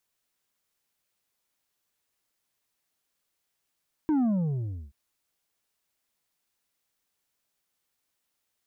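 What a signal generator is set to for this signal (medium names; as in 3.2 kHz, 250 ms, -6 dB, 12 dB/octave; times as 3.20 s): sub drop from 320 Hz, over 0.83 s, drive 5.5 dB, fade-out 0.70 s, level -22 dB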